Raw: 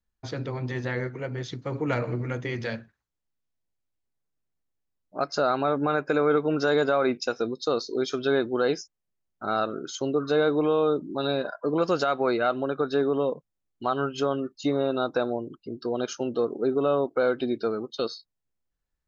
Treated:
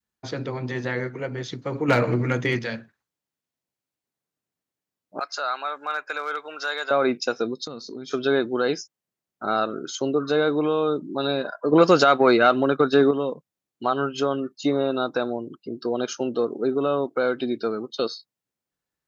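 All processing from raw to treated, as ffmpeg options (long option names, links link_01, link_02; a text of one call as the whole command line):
ffmpeg -i in.wav -filter_complex "[0:a]asettb=1/sr,asplit=3[link_01][link_02][link_03];[link_01]atrim=end=1.884[link_04];[link_02]atrim=start=1.88:end=2.59,asetpts=PTS-STARTPTS,afade=type=in:duration=0.004:curve=qsin,afade=type=out:start_time=0.706:duration=0.004:curve=qsin,volume=19.5dB,asoftclip=hard,volume=-19.5dB,acontrast=64[link_05];[link_03]atrim=start=2.586[link_06];[link_04][link_05]acrossfade=duration=0.004:curve1=hsin:curve2=qsin[link_07];[link_07][link_06]acrossfade=duration=0.004:curve1=qsin:curve2=hsin,asettb=1/sr,asplit=3[link_08][link_09][link_10];[link_08]atrim=end=5.194[link_11];[link_09]atrim=start=5.19:end=6.91,asetpts=PTS-STARTPTS,afade=type=in:duration=0.004:curve=qsin,afade=type=out:start_time=1.716:duration=0.004:curve=qsin,equalizer=frequency=5200:width=3.8:gain=-3,asoftclip=type=hard:threshold=-13.5dB,highpass=1200[link_12];[link_10]atrim=start=6.906[link_13];[link_11][link_12]acrossfade=duration=0.004:curve1=hsin:curve2=qsin[link_14];[link_14][link_13]acrossfade=duration=0.004:curve1=qsin:curve2=hsin,asettb=1/sr,asplit=3[link_15][link_16][link_17];[link_15]atrim=end=7.664[link_18];[link_16]atrim=start=7.66:end=8.11,asetpts=PTS-STARTPTS,afade=type=in:duration=0.004:curve=qsin,afade=type=out:start_time=0.446:duration=0.004:curve=qsin,lowshelf=frequency=280:width_type=q:width=1.5:gain=9.5,acompressor=threshold=-36dB:ratio=6:attack=3.2:release=140:knee=1:detection=peak[link_19];[link_17]atrim=start=8.106[link_20];[link_18][link_19]acrossfade=duration=0.004:curve1=hsin:curve2=qsin[link_21];[link_21][link_20]acrossfade=duration=0.004:curve1=qsin:curve2=hsin,asettb=1/sr,asplit=3[link_22][link_23][link_24];[link_22]atrim=end=11.714[link_25];[link_23]atrim=start=11.71:end=13.11,asetpts=PTS-STARTPTS,afade=type=in:duration=0.004:curve=qsin,afade=type=out:start_time=1.396:duration=0.004:curve=qsin,agate=range=-33dB:threshold=-32dB:ratio=3:release=100:detection=peak,acontrast=86[link_26];[link_24]atrim=start=13.106[link_27];[link_25][link_26]acrossfade=duration=0.004:curve1=hsin:curve2=qsin[link_28];[link_28][link_27]acrossfade=duration=0.004:curve1=qsin:curve2=hsin,adynamicequalizer=threshold=0.02:dfrequency=580:dqfactor=0.83:tfrequency=580:tqfactor=0.83:attack=5:release=100:ratio=0.375:range=2.5:mode=cutabove:tftype=bell,highpass=140,volume=3.5dB" out.wav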